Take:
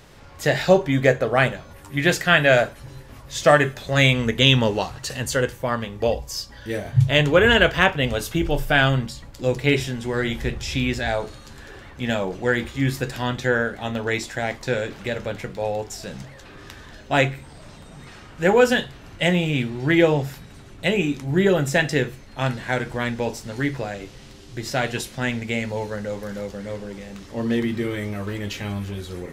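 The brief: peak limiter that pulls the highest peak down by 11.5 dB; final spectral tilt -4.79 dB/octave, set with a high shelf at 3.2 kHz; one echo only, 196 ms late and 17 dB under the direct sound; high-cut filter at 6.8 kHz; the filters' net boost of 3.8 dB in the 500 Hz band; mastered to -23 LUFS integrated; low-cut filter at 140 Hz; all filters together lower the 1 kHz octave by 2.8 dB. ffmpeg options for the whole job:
-af "highpass=140,lowpass=6800,equalizer=f=500:t=o:g=6.5,equalizer=f=1000:t=o:g=-8.5,highshelf=f=3200:g=5.5,alimiter=limit=0.299:level=0:latency=1,aecho=1:1:196:0.141,volume=1.06"

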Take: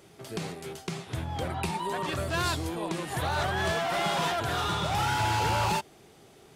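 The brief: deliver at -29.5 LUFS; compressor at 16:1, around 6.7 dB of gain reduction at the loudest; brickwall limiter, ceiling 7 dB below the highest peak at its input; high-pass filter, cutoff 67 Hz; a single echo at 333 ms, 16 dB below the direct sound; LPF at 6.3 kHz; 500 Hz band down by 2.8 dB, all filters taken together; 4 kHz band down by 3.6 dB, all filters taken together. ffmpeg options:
-af "highpass=67,lowpass=6300,equalizer=f=500:t=o:g=-4,equalizer=f=4000:t=o:g=-4,acompressor=threshold=0.0282:ratio=16,alimiter=level_in=1.88:limit=0.0631:level=0:latency=1,volume=0.531,aecho=1:1:333:0.158,volume=2.66"

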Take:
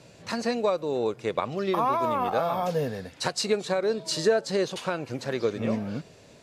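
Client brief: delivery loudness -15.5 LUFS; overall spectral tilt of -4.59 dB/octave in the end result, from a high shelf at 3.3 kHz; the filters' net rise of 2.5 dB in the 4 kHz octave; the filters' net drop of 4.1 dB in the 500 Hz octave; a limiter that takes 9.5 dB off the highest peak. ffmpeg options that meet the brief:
-af "equalizer=f=500:t=o:g=-5,highshelf=f=3300:g=-6.5,equalizer=f=4000:t=o:g=7.5,volume=6.31,alimiter=limit=0.631:level=0:latency=1"

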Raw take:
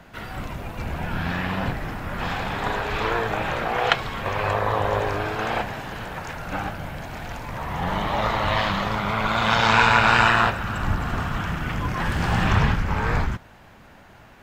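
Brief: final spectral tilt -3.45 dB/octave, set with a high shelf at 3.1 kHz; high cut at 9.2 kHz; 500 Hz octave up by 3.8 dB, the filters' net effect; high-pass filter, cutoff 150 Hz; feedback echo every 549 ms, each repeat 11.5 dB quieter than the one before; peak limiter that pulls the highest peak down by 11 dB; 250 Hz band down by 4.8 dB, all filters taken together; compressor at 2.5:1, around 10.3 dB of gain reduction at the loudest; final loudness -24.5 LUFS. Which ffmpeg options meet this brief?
-af "highpass=150,lowpass=9200,equalizer=f=250:t=o:g=-7,equalizer=f=500:t=o:g=6.5,highshelf=f=3100:g=-6.5,acompressor=threshold=0.0355:ratio=2.5,alimiter=limit=0.0668:level=0:latency=1,aecho=1:1:549|1098|1647:0.266|0.0718|0.0194,volume=2.66"

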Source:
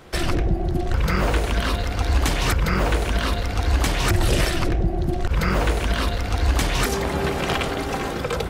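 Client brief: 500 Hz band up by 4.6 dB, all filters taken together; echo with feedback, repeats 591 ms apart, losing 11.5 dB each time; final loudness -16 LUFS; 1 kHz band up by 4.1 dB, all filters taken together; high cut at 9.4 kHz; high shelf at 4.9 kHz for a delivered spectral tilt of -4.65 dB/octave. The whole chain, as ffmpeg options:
-af "lowpass=9400,equalizer=f=500:t=o:g=5,equalizer=f=1000:t=o:g=3.5,highshelf=f=4900:g=6,aecho=1:1:591|1182|1773:0.266|0.0718|0.0194,volume=1.68"

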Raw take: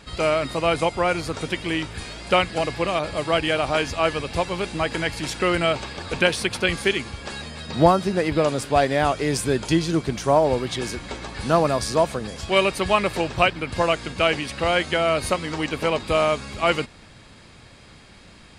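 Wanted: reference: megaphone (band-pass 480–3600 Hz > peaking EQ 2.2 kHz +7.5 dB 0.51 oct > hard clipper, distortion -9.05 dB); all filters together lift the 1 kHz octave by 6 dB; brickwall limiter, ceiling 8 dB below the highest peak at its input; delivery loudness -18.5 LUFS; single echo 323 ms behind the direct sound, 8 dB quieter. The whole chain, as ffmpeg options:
-af "equalizer=f=1000:t=o:g=8,alimiter=limit=0.447:level=0:latency=1,highpass=480,lowpass=3600,equalizer=f=2200:t=o:w=0.51:g=7.5,aecho=1:1:323:0.398,asoftclip=type=hard:threshold=0.133,volume=1.78"

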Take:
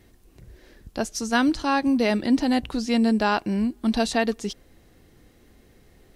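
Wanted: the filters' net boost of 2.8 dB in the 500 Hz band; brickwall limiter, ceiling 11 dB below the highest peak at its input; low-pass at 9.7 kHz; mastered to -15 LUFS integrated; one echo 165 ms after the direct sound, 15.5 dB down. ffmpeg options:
-af "lowpass=9700,equalizer=f=500:t=o:g=3.5,alimiter=limit=0.15:level=0:latency=1,aecho=1:1:165:0.168,volume=3.55"

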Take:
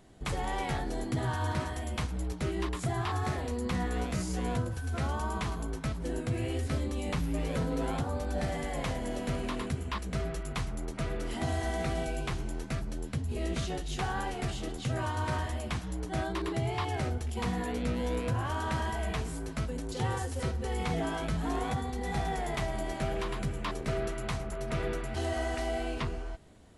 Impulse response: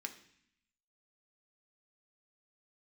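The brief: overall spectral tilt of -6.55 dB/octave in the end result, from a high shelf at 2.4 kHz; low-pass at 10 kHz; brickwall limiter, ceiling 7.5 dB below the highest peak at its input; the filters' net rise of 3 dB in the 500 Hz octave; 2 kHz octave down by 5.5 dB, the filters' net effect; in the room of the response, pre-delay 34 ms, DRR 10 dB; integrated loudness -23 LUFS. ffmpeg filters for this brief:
-filter_complex "[0:a]lowpass=10000,equalizer=f=500:t=o:g=4.5,equalizer=f=2000:t=o:g=-5.5,highshelf=f=2400:g=-4,alimiter=level_in=1.26:limit=0.0631:level=0:latency=1,volume=0.794,asplit=2[s0][s1];[1:a]atrim=start_sample=2205,adelay=34[s2];[s1][s2]afir=irnorm=-1:irlink=0,volume=0.398[s3];[s0][s3]amix=inputs=2:normalize=0,volume=4.22"

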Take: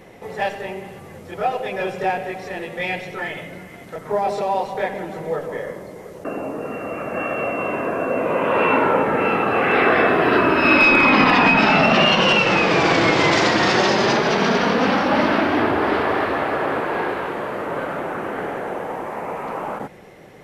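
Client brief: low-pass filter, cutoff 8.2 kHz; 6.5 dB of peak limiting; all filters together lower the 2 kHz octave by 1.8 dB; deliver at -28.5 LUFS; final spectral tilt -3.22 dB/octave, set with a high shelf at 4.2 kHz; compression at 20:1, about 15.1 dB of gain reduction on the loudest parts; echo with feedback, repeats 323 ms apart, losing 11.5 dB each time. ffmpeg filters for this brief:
-af "lowpass=8200,equalizer=f=2000:t=o:g=-4,highshelf=f=4200:g=5.5,acompressor=threshold=0.0501:ratio=20,alimiter=limit=0.0668:level=0:latency=1,aecho=1:1:323|646|969:0.266|0.0718|0.0194,volume=1.58"

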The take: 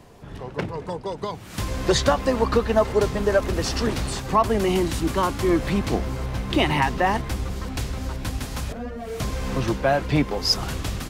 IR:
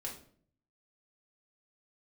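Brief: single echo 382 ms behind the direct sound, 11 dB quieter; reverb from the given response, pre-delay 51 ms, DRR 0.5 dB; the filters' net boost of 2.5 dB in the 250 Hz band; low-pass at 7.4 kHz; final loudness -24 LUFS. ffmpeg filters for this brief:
-filter_complex "[0:a]lowpass=7400,equalizer=f=250:t=o:g=3.5,aecho=1:1:382:0.282,asplit=2[s0][s1];[1:a]atrim=start_sample=2205,adelay=51[s2];[s1][s2]afir=irnorm=-1:irlink=0,volume=1.06[s3];[s0][s3]amix=inputs=2:normalize=0,volume=0.596"

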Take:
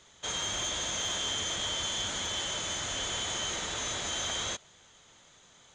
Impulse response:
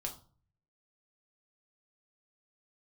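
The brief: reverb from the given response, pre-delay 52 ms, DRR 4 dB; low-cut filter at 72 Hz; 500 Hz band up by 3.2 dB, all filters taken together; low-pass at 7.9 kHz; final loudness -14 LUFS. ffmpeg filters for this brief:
-filter_complex "[0:a]highpass=72,lowpass=7900,equalizer=f=500:t=o:g=4,asplit=2[s0][s1];[1:a]atrim=start_sample=2205,adelay=52[s2];[s1][s2]afir=irnorm=-1:irlink=0,volume=0.668[s3];[s0][s3]amix=inputs=2:normalize=0,volume=6.31"

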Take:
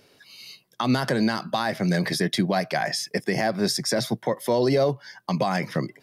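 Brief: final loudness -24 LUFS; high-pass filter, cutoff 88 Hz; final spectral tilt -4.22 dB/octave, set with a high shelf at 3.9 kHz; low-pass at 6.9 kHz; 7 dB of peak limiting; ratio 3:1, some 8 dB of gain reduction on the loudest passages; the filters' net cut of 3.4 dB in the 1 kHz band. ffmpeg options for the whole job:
-af "highpass=88,lowpass=6900,equalizer=f=1000:t=o:g=-5.5,highshelf=f=3900:g=8.5,acompressor=threshold=0.0355:ratio=3,volume=2.99,alimiter=limit=0.224:level=0:latency=1"

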